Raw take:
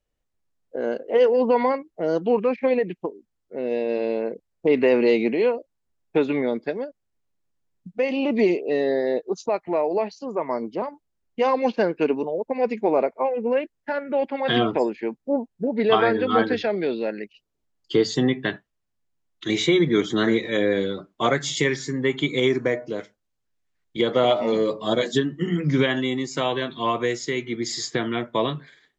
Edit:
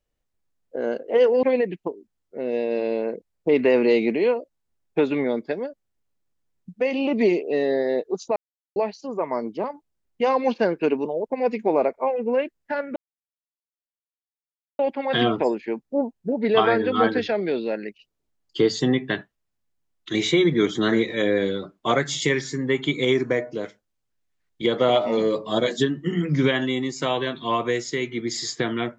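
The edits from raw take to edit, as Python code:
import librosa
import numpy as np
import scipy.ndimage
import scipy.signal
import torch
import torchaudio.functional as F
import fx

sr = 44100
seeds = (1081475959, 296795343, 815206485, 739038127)

y = fx.edit(x, sr, fx.cut(start_s=1.43, length_s=1.18),
    fx.silence(start_s=9.54, length_s=0.4),
    fx.insert_silence(at_s=14.14, length_s=1.83), tone=tone)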